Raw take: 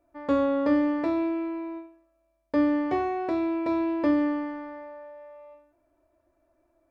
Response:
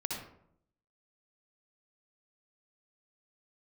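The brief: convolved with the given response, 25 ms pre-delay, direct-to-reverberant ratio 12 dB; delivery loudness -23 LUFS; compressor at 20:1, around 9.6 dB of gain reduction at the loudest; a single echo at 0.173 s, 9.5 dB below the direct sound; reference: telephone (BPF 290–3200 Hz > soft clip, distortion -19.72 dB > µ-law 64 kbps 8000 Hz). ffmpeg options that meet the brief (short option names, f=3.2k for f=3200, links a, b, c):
-filter_complex "[0:a]acompressor=threshold=-28dB:ratio=20,aecho=1:1:173:0.335,asplit=2[a][b];[1:a]atrim=start_sample=2205,adelay=25[c];[b][c]afir=irnorm=-1:irlink=0,volume=-14.5dB[d];[a][d]amix=inputs=2:normalize=0,highpass=290,lowpass=3.2k,asoftclip=threshold=-26dB,volume=12dB" -ar 8000 -c:a pcm_mulaw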